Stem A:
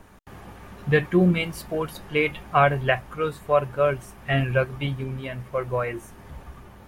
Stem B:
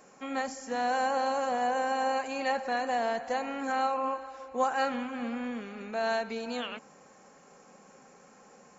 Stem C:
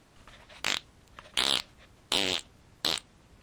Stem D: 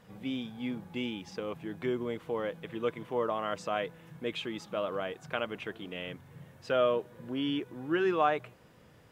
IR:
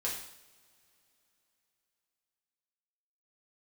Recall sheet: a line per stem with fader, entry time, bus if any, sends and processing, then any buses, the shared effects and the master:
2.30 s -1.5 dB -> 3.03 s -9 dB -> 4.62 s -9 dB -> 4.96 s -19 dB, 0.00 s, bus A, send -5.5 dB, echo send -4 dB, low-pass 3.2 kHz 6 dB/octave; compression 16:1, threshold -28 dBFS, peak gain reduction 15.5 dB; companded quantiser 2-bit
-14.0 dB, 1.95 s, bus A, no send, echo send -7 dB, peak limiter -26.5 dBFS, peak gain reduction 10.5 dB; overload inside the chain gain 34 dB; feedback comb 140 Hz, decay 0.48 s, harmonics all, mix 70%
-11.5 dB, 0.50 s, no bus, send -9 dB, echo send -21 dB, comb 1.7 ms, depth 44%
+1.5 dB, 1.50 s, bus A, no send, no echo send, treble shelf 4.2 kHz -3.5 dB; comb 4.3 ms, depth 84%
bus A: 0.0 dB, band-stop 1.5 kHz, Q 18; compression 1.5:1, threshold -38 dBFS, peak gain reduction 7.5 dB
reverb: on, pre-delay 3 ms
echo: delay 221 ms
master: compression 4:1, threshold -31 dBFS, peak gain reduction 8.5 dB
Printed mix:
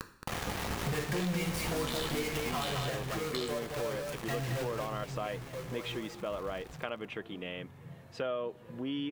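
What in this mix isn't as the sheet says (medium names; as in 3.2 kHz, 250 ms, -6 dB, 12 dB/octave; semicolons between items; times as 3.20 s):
stem B -14.0 dB -> -21.0 dB; stem D: missing comb 4.3 ms, depth 84%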